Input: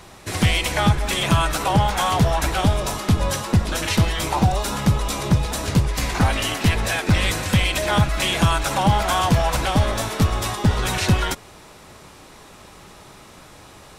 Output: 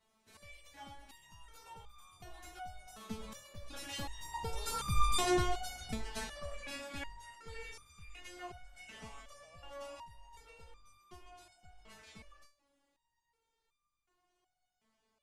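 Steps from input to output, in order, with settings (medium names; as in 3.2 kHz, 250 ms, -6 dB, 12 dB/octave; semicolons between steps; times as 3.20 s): Doppler pass-by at 4.65 s, 27 m/s, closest 4.2 m; speed mistake 48 kHz file played as 44.1 kHz; resonator arpeggio 2.7 Hz 220–1200 Hz; trim +12.5 dB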